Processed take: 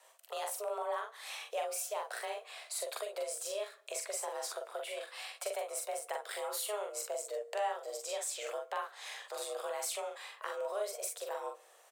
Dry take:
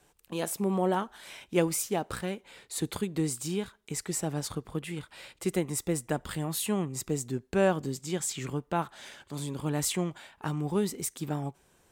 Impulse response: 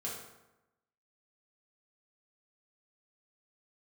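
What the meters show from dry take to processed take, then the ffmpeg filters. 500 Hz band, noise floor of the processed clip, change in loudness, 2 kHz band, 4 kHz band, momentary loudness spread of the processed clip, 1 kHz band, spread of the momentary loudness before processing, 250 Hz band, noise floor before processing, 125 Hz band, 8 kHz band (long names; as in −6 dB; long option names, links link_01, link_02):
−5.5 dB, −62 dBFS, −7.0 dB, −4.0 dB, −3.5 dB, 6 LU, −3.0 dB, 11 LU, below −30 dB, −66 dBFS, below −40 dB, −4.5 dB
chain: -filter_complex "[0:a]highpass=frequency=270:width=0.5412,highpass=frequency=270:width=1.3066,afreqshift=210,acompressor=threshold=-41dB:ratio=3,aecho=1:1:43|58:0.668|0.237,asplit=2[link_01][link_02];[1:a]atrim=start_sample=2205[link_03];[link_02][link_03]afir=irnorm=-1:irlink=0,volume=-18.5dB[link_04];[link_01][link_04]amix=inputs=2:normalize=0,volume=1dB"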